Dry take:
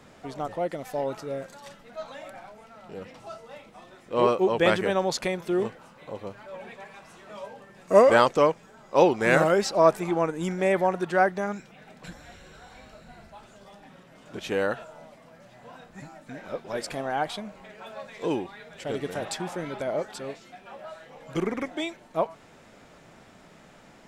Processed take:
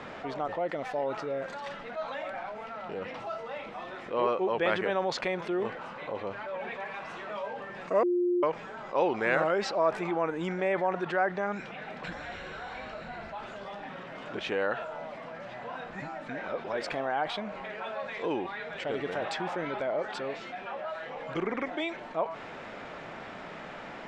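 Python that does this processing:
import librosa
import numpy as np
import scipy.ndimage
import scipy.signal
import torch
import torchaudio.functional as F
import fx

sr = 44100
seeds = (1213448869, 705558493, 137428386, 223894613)

y = fx.edit(x, sr, fx.bleep(start_s=8.03, length_s=0.4, hz=354.0, db=-16.0), tone=tone)
y = scipy.signal.sosfilt(scipy.signal.butter(2, 2800.0, 'lowpass', fs=sr, output='sos'), y)
y = fx.low_shelf(y, sr, hz=290.0, db=-11.5)
y = fx.env_flatten(y, sr, amount_pct=50)
y = F.gain(torch.from_numpy(y), -7.5).numpy()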